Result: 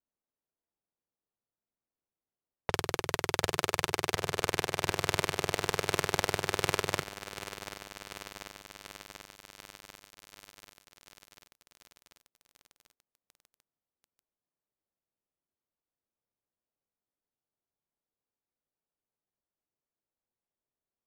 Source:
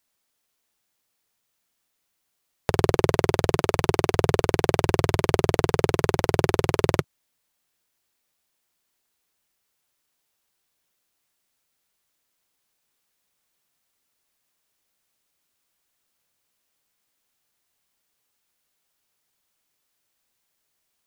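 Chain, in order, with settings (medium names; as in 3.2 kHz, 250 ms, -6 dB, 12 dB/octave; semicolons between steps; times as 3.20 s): tilt shelf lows -7 dB, about 820 Hz; level-controlled noise filter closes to 460 Hz, open at -26.5 dBFS; compressor with a negative ratio -24 dBFS, ratio -0.5; bit-crushed delay 740 ms, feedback 80%, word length 5-bit, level -13 dB; trim -6 dB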